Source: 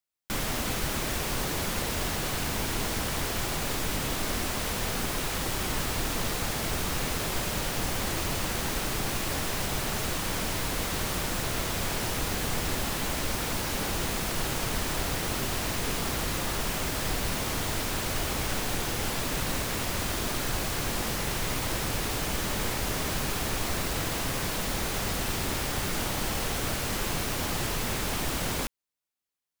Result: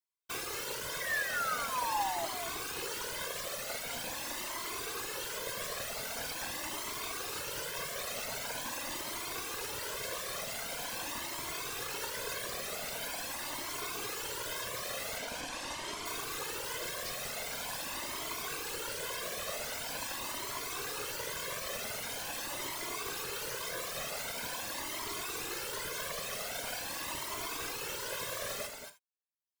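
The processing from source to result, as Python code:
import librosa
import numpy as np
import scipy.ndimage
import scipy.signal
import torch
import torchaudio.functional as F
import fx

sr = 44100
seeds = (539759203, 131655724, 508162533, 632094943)

p1 = fx.lower_of_two(x, sr, delay_ms=1.9)
p2 = fx.lowpass(p1, sr, hz=7900.0, slope=12, at=(15.18, 16.06))
p3 = fx.dereverb_blind(p2, sr, rt60_s=0.78)
p4 = scipy.signal.sosfilt(scipy.signal.butter(2, 230.0, 'highpass', fs=sr, output='sos'), p3)
p5 = fx.whisperise(p4, sr, seeds[0])
p6 = fx.spec_paint(p5, sr, seeds[1], shape='fall', start_s=1.0, length_s=1.26, low_hz=650.0, high_hz=2000.0, level_db=-32.0)
p7 = p6 + fx.echo_single(p6, sr, ms=228, db=-7.0, dry=0)
p8 = fx.rev_gated(p7, sr, seeds[2], gate_ms=100, shape='flat', drr_db=9.5)
y = fx.comb_cascade(p8, sr, direction='rising', hz=0.44)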